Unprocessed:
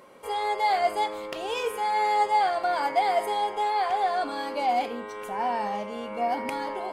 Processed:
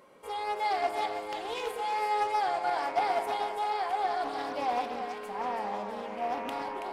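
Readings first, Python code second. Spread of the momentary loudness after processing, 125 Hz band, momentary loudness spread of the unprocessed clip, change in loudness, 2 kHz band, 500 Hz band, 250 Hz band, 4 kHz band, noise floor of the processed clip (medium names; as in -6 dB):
7 LU, no reading, 9 LU, -5.0 dB, -5.0 dB, -5.0 dB, -5.0 dB, -5.0 dB, -41 dBFS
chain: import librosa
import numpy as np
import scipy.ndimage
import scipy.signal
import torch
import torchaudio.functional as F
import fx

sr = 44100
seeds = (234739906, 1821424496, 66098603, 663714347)

y = fx.echo_split(x, sr, split_hz=750.0, low_ms=126, high_ms=328, feedback_pct=52, wet_db=-6.5)
y = fx.doppler_dist(y, sr, depth_ms=0.24)
y = y * librosa.db_to_amplitude(-6.0)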